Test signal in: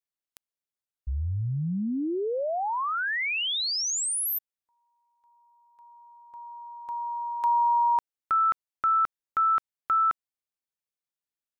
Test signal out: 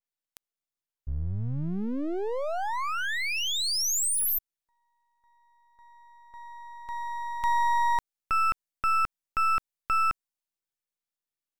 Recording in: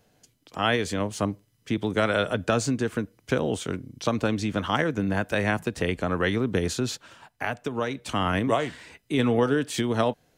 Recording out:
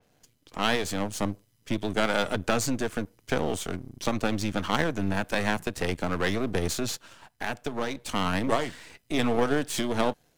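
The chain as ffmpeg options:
ffmpeg -i in.wav -af "aeval=exprs='if(lt(val(0),0),0.251*val(0),val(0))':channel_layout=same,adynamicequalizer=threshold=0.00562:dfrequency=4300:dqfactor=0.7:tfrequency=4300:tqfactor=0.7:attack=5:release=100:ratio=0.375:range=2:mode=boostabove:tftype=highshelf,volume=1.5dB" out.wav

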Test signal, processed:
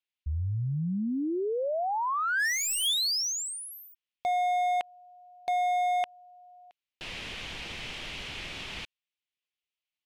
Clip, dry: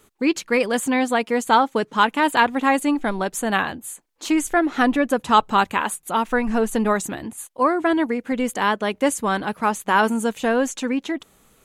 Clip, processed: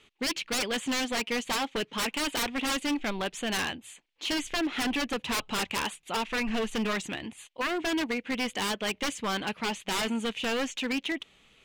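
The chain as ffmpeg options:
ffmpeg -i in.wav -af "lowpass=frequency=3100:width_type=q:width=2.4,aexciter=amount=1.1:drive=9.7:freq=2000,aeval=exprs='0.158*(abs(mod(val(0)/0.158+3,4)-2)-1)':channel_layout=same,volume=-7.5dB" out.wav

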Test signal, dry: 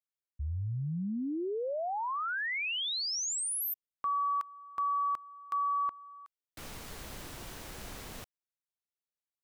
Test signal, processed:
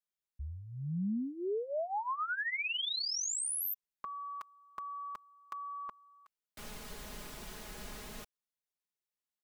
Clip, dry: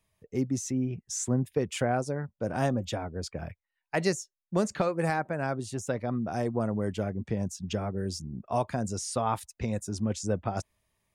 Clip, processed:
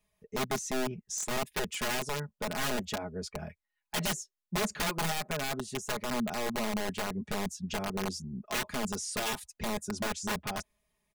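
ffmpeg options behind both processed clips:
ffmpeg -i in.wav -af "aeval=exprs='(mod(15*val(0)+1,2)-1)/15':channel_layout=same,aecho=1:1:4.8:0.7,volume=-3.5dB" out.wav

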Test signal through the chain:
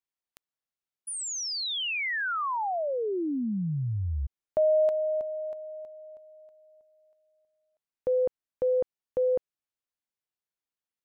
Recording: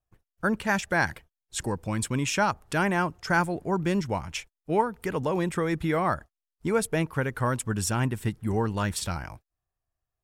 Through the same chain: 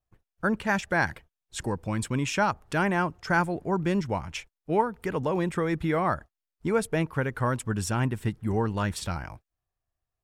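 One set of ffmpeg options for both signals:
ffmpeg -i in.wav -af "highshelf=frequency=5200:gain=-7" out.wav

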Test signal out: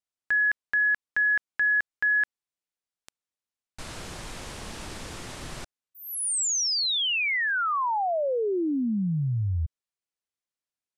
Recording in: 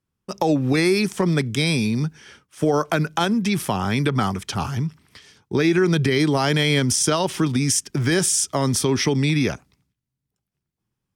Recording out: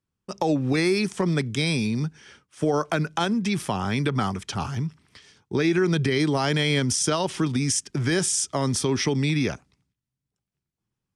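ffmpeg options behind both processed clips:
ffmpeg -i in.wav -af "lowpass=frequency=10000:width=0.5412,lowpass=frequency=10000:width=1.3066,volume=-3.5dB" out.wav

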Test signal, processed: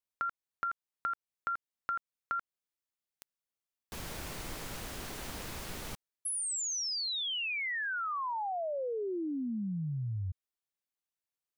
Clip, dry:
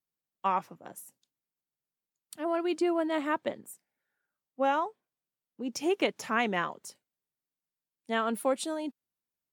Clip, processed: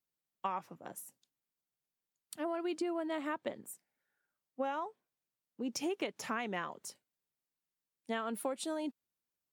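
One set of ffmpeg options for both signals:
ffmpeg -i in.wav -af "acompressor=threshold=-32dB:ratio=6,volume=-1dB" out.wav

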